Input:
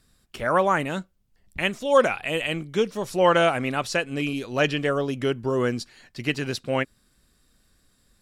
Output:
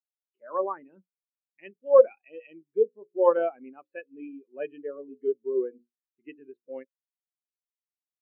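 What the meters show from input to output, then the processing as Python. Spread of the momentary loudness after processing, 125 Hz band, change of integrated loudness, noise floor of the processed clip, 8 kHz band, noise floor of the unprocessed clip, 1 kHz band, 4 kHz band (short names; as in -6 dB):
23 LU, under -35 dB, -1.5 dB, under -85 dBFS, under -40 dB, -65 dBFS, -9.5 dB, under -30 dB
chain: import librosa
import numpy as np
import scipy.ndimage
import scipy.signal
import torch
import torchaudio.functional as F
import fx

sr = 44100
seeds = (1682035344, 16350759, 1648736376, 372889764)

y = fx.cabinet(x, sr, low_hz=240.0, low_slope=12, high_hz=3100.0, hz=(370.0, 630.0, 1400.0), db=(3, -4, -3))
y = fx.hum_notches(y, sr, base_hz=60, count=9)
y = fx.spectral_expand(y, sr, expansion=2.5)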